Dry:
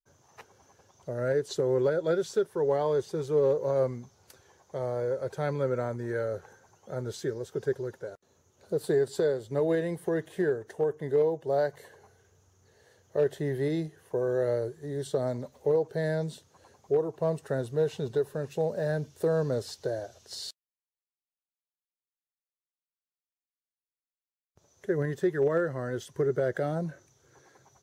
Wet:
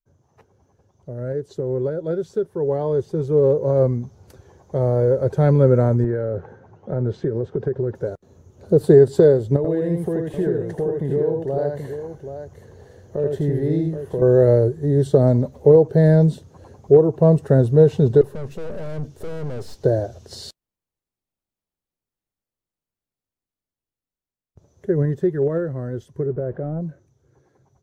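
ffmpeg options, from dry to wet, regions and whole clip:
-filter_complex "[0:a]asettb=1/sr,asplit=3[a][b][c];[a]atrim=end=6.044[d];[b]atrim=start=6.04:end=7.95,asetpts=PTS-STARTPTS,afade=t=in:d=0.004:c=qsin,afade=t=out:st=1.906:d=0.004:c=qsin,highpass=100,lowpass=2.7k,acompressor=threshold=-33dB:ratio=6:attack=3.2:release=140:knee=1:detection=peak[e];[c]atrim=start=7.946[f];[d][e]acrossfade=d=0.004:c1=hsin:c2=qsin[g];[g][f]acrossfade=d=0.004:c1=qsin:c2=hsin,asettb=1/sr,asplit=3[h][i][j];[h]atrim=end=9.564[k];[i]atrim=start=9.56:end=14.22,asetpts=PTS-STARTPTS,afade=t=in:d=0.004:c=qsin,afade=t=out:st=4.656:d=0.004:c=qsin,acompressor=threshold=-42dB:ratio=2:attack=3.2:release=140:knee=1:detection=peak,aecho=1:1:82|778:0.668|0.355,atrim=end_sample=205506[l];[j]atrim=start=14.216[m];[k][l]acrossfade=d=0.004:c1=hsin:c2=qsin[n];[n][m]acrossfade=d=0.004:c1=qsin:c2=hsin,asettb=1/sr,asplit=3[o][p][q];[o]atrim=end=18.214[r];[p]atrim=start=18.21:end=19.84,asetpts=PTS-STARTPTS,afade=t=in:d=0.004:c=qsin,afade=t=out:st=1.626:d=0.004:c=qsin,highpass=f=170:p=1,aeval=exprs='(tanh(141*val(0)+0.4)-tanh(0.4))/141':c=same[s];[q]atrim=start=19.836[t];[r][s]acrossfade=d=0.004:c1=hsin:c2=qsin[u];[u][t]acrossfade=d=0.004:c1=qsin:c2=hsin,asettb=1/sr,asplit=3[v][w][x];[v]atrim=end=26.264[y];[w]atrim=start=26.26:end=26.81,asetpts=PTS-STARTPTS,afade=t=in:d=0.004:c=qsin,afade=t=out:st=0.546:d=0.004:c=qsin,aeval=exprs='val(0)+0.5*0.00891*sgn(val(0))':c=same,lowpass=1.4k[z];[x]atrim=start=26.806[aa];[y][z]acrossfade=d=0.004:c1=hsin:c2=qsin[ab];[ab][aa]acrossfade=d=0.004:c1=qsin:c2=hsin,lowshelf=f=91:g=6,dynaudnorm=f=240:g=31:m=16dB,tiltshelf=f=720:g=8.5,volume=-4dB"

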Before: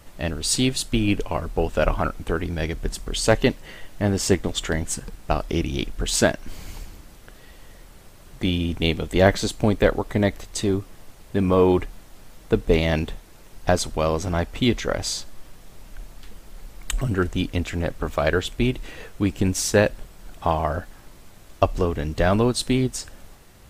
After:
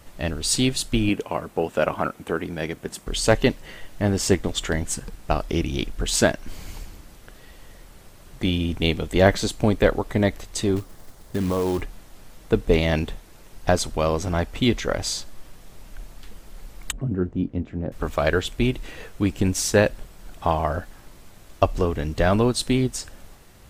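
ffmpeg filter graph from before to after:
-filter_complex "[0:a]asettb=1/sr,asplit=3[a][b][c];[a]atrim=end=1.094[d];[b]atrim=start=1.09:end=3.07,asetpts=PTS-STARTPTS,afade=t=in:d=0.004:c=qsin,afade=t=out:st=1.976:d=0.004:c=qsin,highpass=160,equalizer=f=4.8k:t=o:w=1:g=-4.5[e];[c]atrim=start=3.066[f];[d][e]acrossfade=d=0.004:c1=hsin:c2=qsin[g];[g][f]acrossfade=d=0.004:c1=qsin:c2=hsin,asettb=1/sr,asplit=3[h][i][j];[h]atrim=end=10.764[k];[i]atrim=start=10.76:end=11.82,asetpts=PTS-STARTPTS,afade=t=in:d=0.004:c=qsin,afade=t=out:st=1.056:d=0.004:c=qsin,equalizer=f=2.6k:t=o:w=0.49:g=-8,acompressor=threshold=-19dB:ratio=6:attack=3.2:release=140:knee=1:detection=peak,acrusher=bits=4:mode=log:mix=0:aa=0.000001[l];[j]atrim=start=11.816[m];[k][l]acrossfade=d=0.004:c1=hsin:c2=qsin[n];[n][m]acrossfade=d=0.004:c1=qsin:c2=hsin,asettb=1/sr,asplit=3[o][p][q];[o]atrim=end=16.924[r];[p]atrim=start=16.92:end=17.92,asetpts=PTS-STARTPTS,afade=t=in:d=0.004:c=qsin,afade=t=out:st=0.996:d=0.004:c=qsin,bandpass=f=210:t=q:w=0.82,asplit=2[s][t];[t]adelay=22,volume=-11.5dB[u];[s][u]amix=inputs=2:normalize=0,atrim=end_sample=44100[v];[q]atrim=start=17.916[w];[r][v]acrossfade=d=0.004:c1=hsin:c2=qsin[x];[x][w]acrossfade=d=0.004:c1=qsin:c2=hsin"

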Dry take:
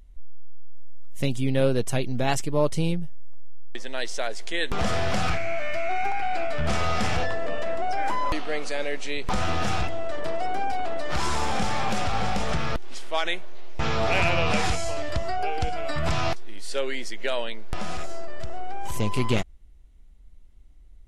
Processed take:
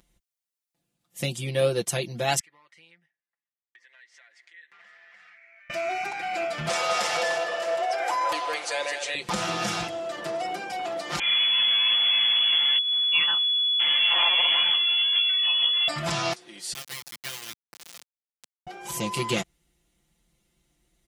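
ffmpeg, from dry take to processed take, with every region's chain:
-filter_complex "[0:a]asettb=1/sr,asplit=3[a][b][c];[a]atrim=end=2.394[d];[b]atrim=start=2.39:end=5.7,asetpts=PTS-STARTPTS,afade=t=in:d=0.004:c=qsin,afade=t=out:st=3.306:d=0.004:c=qsin,bandpass=f=1.9k:t=q:w=7.2,acompressor=threshold=-53dB:ratio=4:attack=3.2:release=140:knee=1:detection=peak[e];[c]atrim=start=5.696[f];[d][e]acrossfade=d=0.004:c1=hsin:c2=qsin[g];[g][f]acrossfade=d=0.004:c1=qsin:c2=hsin,asettb=1/sr,asplit=3[h][i][j];[h]atrim=end=6.684[k];[i]atrim=start=6.68:end=9.15,asetpts=PTS-STARTPTS,afade=t=in:d=0.004:c=qsin,afade=t=out:st=2.466:d=0.004:c=qsin,lowshelf=f=340:t=q:w=1.5:g=-13,aecho=1:1:211|593:0.473|0.178,atrim=end_sample=108927[l];[j]atrim=start=9.146[m];[k][l]acrossfade=d=0.004:c1=hsin:c2=qsin[n];[n][m]acrossfade=d=0.004:c1=qsin:c2=hsin,asettb=1/sr,asplit=3[o][p][q];[o]atrim=end=11.194[r];[p]atrim=start=11.19:end=15.88,asetpts=PTS-STARTPTS,afade=t=in:d=0.004:c=qsin,afade=t=out:st=4.686:d=0.004:c=qsin,bandreject=f=750:w=9.1,flanger=delay=16:depth=5.3:speed=1.6,lowpass=f=2.9k:t=q:w=0.5098,lowpass=f=2.9k:t=q:w=0.6013,lowpass=f=2.9k:t=q:w=0.9,lowpass=f=2.9k:t=q:w=2.563,afreqshift=-3400[s];[q]atrim=start=15.876[t];[r][s]acrossfade=d=0.004:c1=hsin:c2=qsin[u];[u][t]acrossfade=d=0.004:c1=qsin:c2=hsin,asettb=1/sr,asplit=3[v][w][x];[v]atrim=end=16.734[y];[w]atrim=start=16.73:end=18.67,asetpts=PTS-STARTPTS,afade=t=in:d=0.004:c=qsin,afade=t=out:st=1.936:d=0.004:c=qsin,highpass=1.5k,adynamicsmooth=sensitivity=7.5:basefreq=2k,acrusher=bits=3:dc=4:mix=0:aa=0.000001[z];[x]atrim=start=18.666[aa];[y][z]acrossfade=d=0.004:c1=hsin:c2=qsin[ab];[ab][aa]acrossfade=d=0.004:c1=qsin:c2=hsin,highpass=130,highshelf=f=2.9k:g=9,aecho=1:1:5.8:0.93,volume=-4.5dB"

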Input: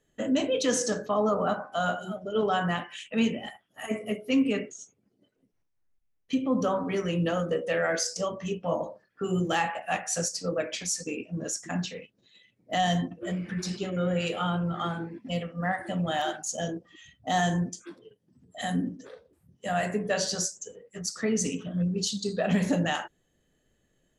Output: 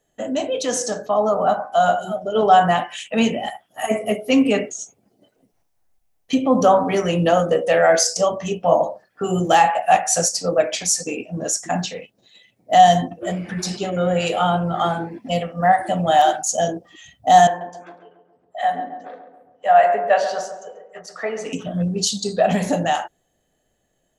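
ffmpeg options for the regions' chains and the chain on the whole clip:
-filter_complex "[0:a]asettb=1/sr,asplit=3[a][b][c];[a]atrim=end=17.474[d];[b]atrim=start=17.47:end=21.53,asetpts=PTS-STARTPTS,afade=t=in:d=0.004:c=qsin,afade=t=out:st=4.056:d=0.004:c=qsin,acrossover=split=450 2800:gain=0.0891 1 0.0631[e][f][g];[e][f][g]amix=inputs=3:normalize=0,asplit=2[h][i];[i]adelay=137,lowpass=f=1.4k:p=1,volume=-8dB,asplit=2[j][k];[k]adelay=137,lowpass=f=1.4k:p=1,volume=0.55,asplit=2[l][m];[m]adelay=137,lowpass=f=1.4k:p=1,volume=0.55,asplit=2[n][o];[o]adelay=137,lowpass=f=1.4k:p=1,volume=0.55,asplit=2[p][q];[q]adelay=137,lowpass=f=1.4k:p=1,volume=0.55,asplit=2[r][s];[s]adelay=137,lowpass=f=1.4k:p=1,volume=0.55,asplit=2[t][u];[u]adelay=137,lowpass=f=1.4k:p=1,volume=0.55[v];[h][j][l][n][p][r][t][v]amix=inputs=8:normalize=0,atrim=end_sample=179046[w];[c]atrim=start=21.526[x];[d][w]acrossfade=d=0.004:c1=hsin:c2=qsin[y];[y][x]acrossfade=d=0.004:c1=qsin:c2=hsin,equalizer=f=730:t=o:w=0.74:g=12,dynaudnorm=f=220:g=17:m=11.5dB,highshelf=f=4.5k:g=8,volume=-1dB"

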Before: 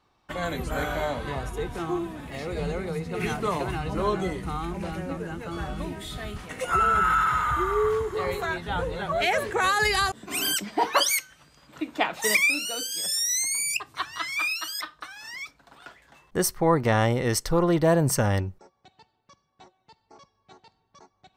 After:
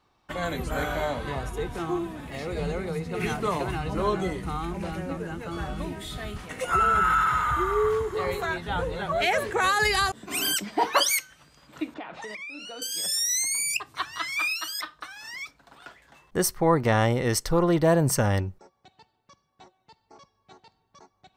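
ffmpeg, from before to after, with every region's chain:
-filter_complex "[0:a]asettb=1/sr,asplit=3[a][b][c];[a]atrim=end=11.944[d];[b]atrim=start=11.94:end=12.82,asetpts=PTS-STARTPTS,afade=t=in:d=0.004:c=qsin,afade=t=out:st=0.876:d=0.004:c=qsin,lowpass=4k,acompressor=threshold=-33dB:ratio=12:attack=3.2:release=140:knee=1:detection=peak,adynamicequalizer=threshold=0.00447:dfrequency=2100:dqfactor=0.7:tfrequency=2100:tqfactor=0.7:attack=5:release=100:ratio=0.375:range=2.5:mode=cutabove:tftype=highshelf[e];[c]atrim=start=12.816[f];[d][e]acrossfade=d=0.004:c1=hsin:c2=qsin[g];[g][f]acrossfade=d=0.004:c1=qsin:c2=hsin"

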